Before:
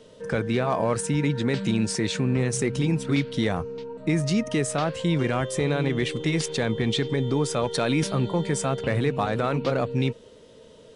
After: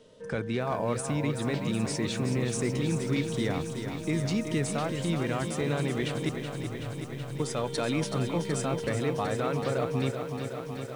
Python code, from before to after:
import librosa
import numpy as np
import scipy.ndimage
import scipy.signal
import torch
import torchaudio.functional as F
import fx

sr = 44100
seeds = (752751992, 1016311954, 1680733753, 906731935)

y = fx.cheby2_bandstop(x, sr, low_hz=310.0, high_hz=8600.0, order=4, stop_db=50, at=(6.29, 7.4))
y = fx.echo_crushed(y, sr, ms=376, feedback_pct=80, bits=8, wet_db=-8)
y = y * 10.0 ** (-6.0 / 20.0)